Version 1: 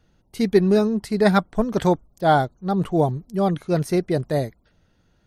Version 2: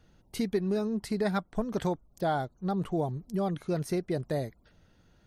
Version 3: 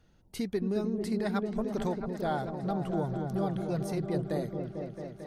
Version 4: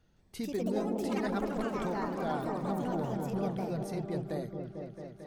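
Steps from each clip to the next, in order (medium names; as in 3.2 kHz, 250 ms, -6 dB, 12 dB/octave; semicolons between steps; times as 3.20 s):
compression 3:1, threshold -30 dBFS, peak gain reduction 14.5 dB
delay with an opening low-pass 223 ms, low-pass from 400 Hz, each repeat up 1 oct, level -3 dB; trim -3 dB
ever faster or slower copies 164 ms, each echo +4 st, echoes 3; trim -4 dB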